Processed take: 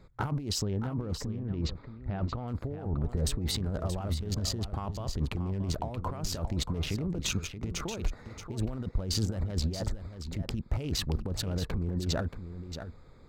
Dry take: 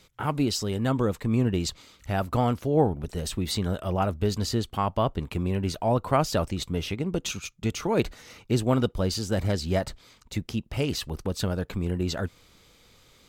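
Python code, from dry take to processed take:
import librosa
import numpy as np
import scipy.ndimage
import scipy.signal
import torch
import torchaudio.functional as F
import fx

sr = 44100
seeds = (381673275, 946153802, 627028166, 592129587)

y = fx.wiener(x, sr, points=15)
y = fx.air_absorb(y, sr, metres=220.0, at=(0.62, 2.48))
y = fx.over_compress(y, sr, threshold_db=-32.0, ratio=-1.0)
y = fx.low_shelf(y, sr, hz=130.0, db=8.0)
y = y + 10.0 ** (-10.0 / 20.0) * np.pad(y, (int(628 * sr / 1000.0), 0))[:len(y)]
y = y * librosa.db_to_amplitude(-3.5)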